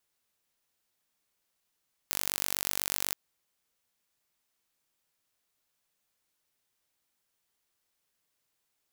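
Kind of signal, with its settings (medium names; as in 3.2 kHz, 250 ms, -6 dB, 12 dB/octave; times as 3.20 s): pulse train 48.1 per s, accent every 0, -3.5 dBFS 1.03 s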